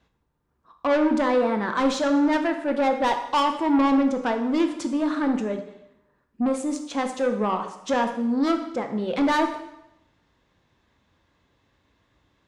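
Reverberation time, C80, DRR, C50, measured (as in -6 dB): 0.85 s, 11.0 dB, 5.5 dB, 8.5 dB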